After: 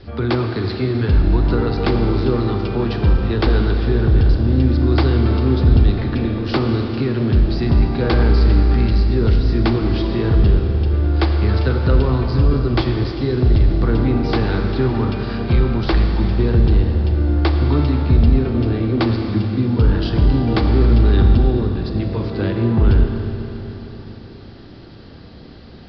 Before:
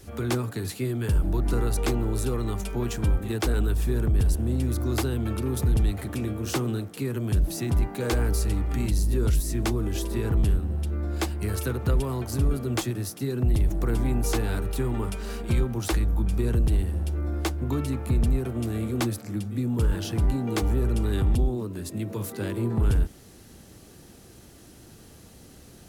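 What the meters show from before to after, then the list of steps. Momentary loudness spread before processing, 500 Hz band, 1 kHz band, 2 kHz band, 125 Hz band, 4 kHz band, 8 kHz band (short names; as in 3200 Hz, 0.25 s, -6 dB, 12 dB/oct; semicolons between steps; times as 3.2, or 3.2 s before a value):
6 LU, +10.0 dB, +10.0 dB, +9.0 dB, +10.0 dB, +8.0 dB, under -20 dB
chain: steep low-pass 5000 Hz 96 dB/oct; bell 2600 Hz -3 dB 0.77 oct; Schroeder reverb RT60 3.8 s, combs from 27 ms, DRR 3.5 dB; gain +8.5 dB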